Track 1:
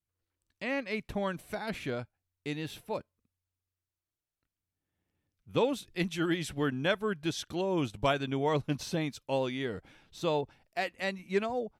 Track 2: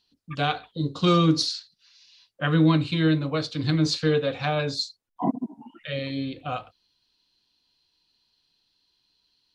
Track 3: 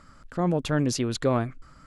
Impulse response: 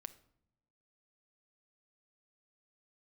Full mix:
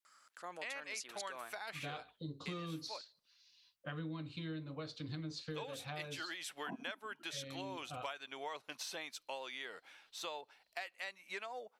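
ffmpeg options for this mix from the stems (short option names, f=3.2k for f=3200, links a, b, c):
-filter_complex "[0:a]highpass=890,volume=0.5dB,asplit=2[a][b];[b]volume=-17.5dB[c];[1:a]adelay=1450,volume=-12.5dB[d];[2:a]highpass=1k,highshelf=f=5.1k:g=10,adelay=50,volume=-9.5dB[e];[3:a]atrim=start_sample=2205[f];[c][f]afir=irnorm=-1:irlink=0[g];[a][d][e][g]amix=inputs=4:normalize=0,acompressor=threshold=-41dB:ratio=6"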